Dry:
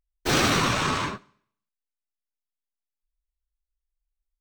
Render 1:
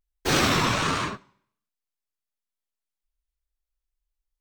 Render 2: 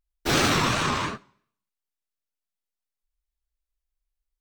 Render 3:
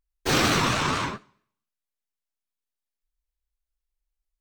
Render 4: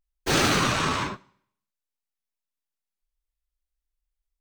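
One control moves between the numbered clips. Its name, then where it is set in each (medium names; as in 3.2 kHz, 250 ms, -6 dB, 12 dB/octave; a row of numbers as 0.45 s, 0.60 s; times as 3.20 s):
vibrato, rate: 1.3 Hz, 2.9 Hz, 4.4 Hz, 0.54 Hz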